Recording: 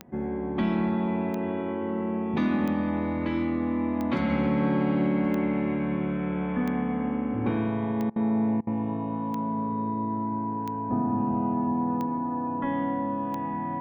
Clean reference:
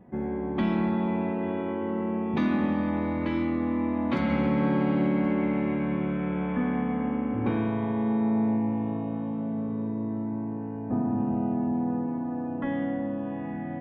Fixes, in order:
click removal
notch filter 980 Hz, Q 30
repair the gap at 0:08.10/0:08.61, 59 ms

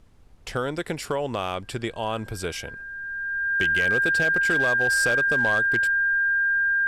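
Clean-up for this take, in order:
clipped peaks rebuilt −16 dBFS
notch filter 1,600 Hz, Q 30
downward expander −31 dBFS, range −21 dB

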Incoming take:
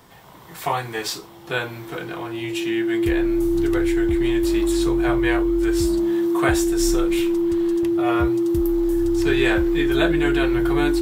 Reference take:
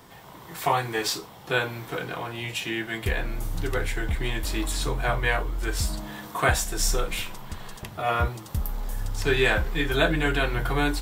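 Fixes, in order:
notch filter 340 Hz, Q 30

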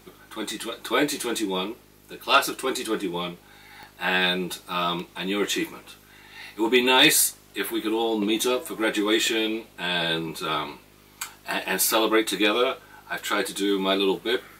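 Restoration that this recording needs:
clipped peaks rebuilt −7.5 dBFS
click removal
hum removal 50.9 Hz, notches 8

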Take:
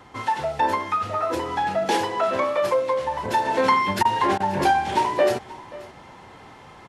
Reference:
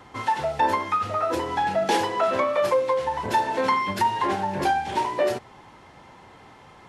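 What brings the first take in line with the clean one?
repair the gap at 0:04.03/0:04.38, 20 ms
echo removal 531 ms −19.5 dB
level correction −3.5 dB, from 0:03.45

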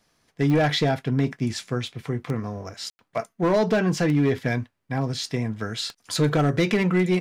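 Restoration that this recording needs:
clipped peaks rebuilt −14.5 dBFS
click removal
ambience match 0:02.90–0:02.99

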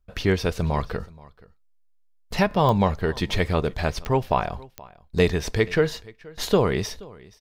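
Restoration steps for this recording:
click removal
echo removal 477 ms −22.5 dB

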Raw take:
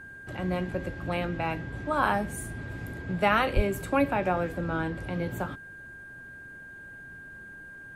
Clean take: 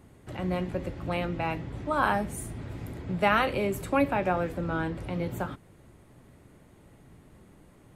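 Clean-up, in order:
notch filter 1,600 Hz, Q 30
high-pass at the plosives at 0:03.55

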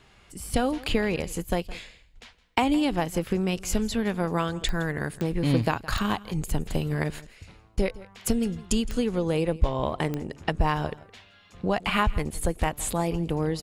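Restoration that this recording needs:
click removal
echo removal 165 ms −19.5 dB

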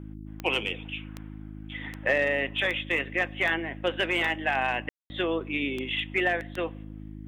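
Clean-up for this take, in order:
click removal
hum removal 52.3 Hz, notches 6
ambience match 0:04.89–0:05.10

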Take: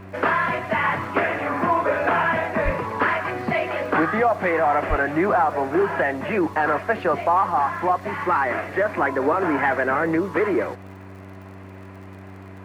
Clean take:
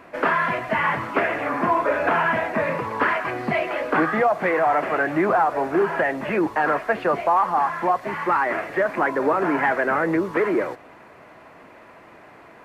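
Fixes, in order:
click removal
hum removal 95.9 Hz, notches 4
0:02.64–0:02.76: high-pass filter 140 Hz 24 dB per octave
0:04.89–0:05.01: high-pass filter 140 Hz 24 dB per octave

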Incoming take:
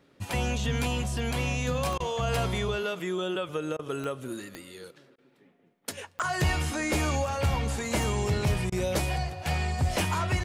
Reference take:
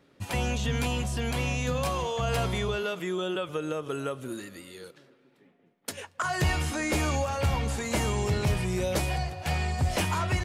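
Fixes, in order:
click removal
repair the gap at 0:01.98/0:03.77/0:05.16/0:08.70, 20 ms

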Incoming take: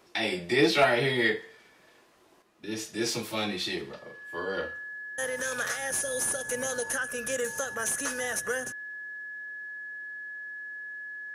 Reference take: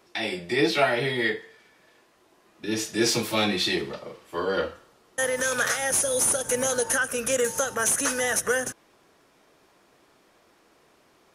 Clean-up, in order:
clipped peaks rebuilt −13 dBFS
notch filter 1,700 Hz, Q 30
level correction +7 dB, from 0:02.42

